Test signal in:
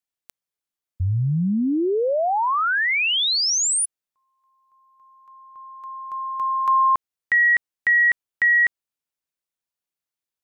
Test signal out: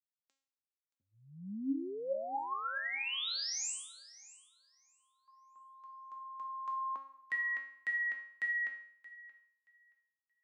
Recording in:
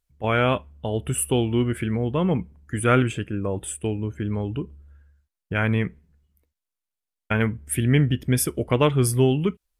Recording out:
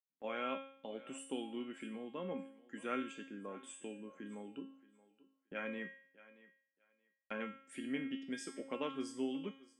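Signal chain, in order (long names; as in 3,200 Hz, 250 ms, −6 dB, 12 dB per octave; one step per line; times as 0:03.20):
Chebyshev band-pass filter 200–7,600 Hz, order 4
noise gate −53 dBFS, range −13 dB
in parallel at −2 dB: downward compressor, threshold −33 dBFS
on the sum: tuned comb filter 270 Hz, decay 0.58 s, harmonics all, mix 90%
feedback echo with a high-pass in the loop 626 ms, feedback 19%, high-pass 280 Hz, level −18.5 dB
level −3.5 dB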